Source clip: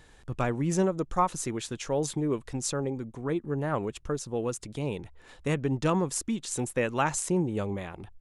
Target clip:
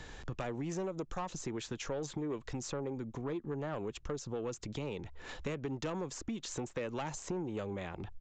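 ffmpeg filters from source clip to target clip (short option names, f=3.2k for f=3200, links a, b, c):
-filter_complex "[0:a]acrossover=split=310|1000|2100[a][b][c][d];[a]acompressor=threshold=-36dB:ratio=4[e];[b]acompressor=threshold=-28dB:ratio=4[f];[c]acompressor=threshold=-46dB:ratio=4[g];[d]acompressor=threshold=-41dB:ratio=4[h];[e][f][g][h]amix=inputs=4:normalize=0,aresample=16000,asoftclip=type=tanh:threshold=-25.5dB,aresample=44100,acompressor=threshold=-49dB:ratio=2.5,volume=7.5dB"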